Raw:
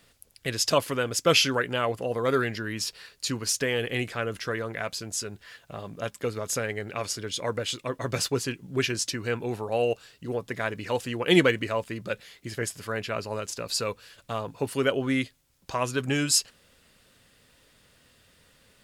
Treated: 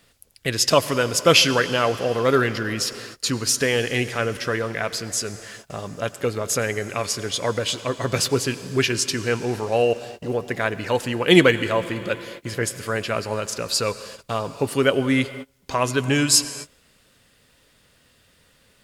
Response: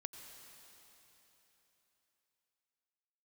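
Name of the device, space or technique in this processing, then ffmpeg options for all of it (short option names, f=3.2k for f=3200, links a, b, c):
keyed gated reverb: -filter_complex "[0:a]asplit=3[a][b][c];[1:a]atrim=start_sample=2205[d];[b][d]afir=irnorm=-1:irlink=0[e];[c]apad=whole_len=830559[f];[e][f]sidechaingate=range=-30dB:threshold=-51dB:ratio=16:detection=peak,volume=1dB[g];[a][g]amix=inputs=2:normalize=0,volume=1.5dB"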